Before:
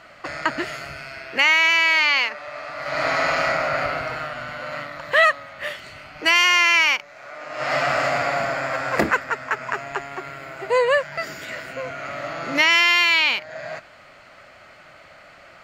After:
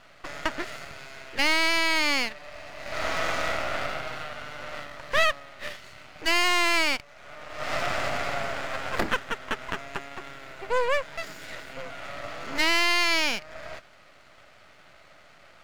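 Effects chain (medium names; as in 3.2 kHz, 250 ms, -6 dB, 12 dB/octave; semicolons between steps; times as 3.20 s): 2.26–2.93 s: Butterworth band-stop 1.3 kHz, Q 3; half-wave rectifier; trim -3 dB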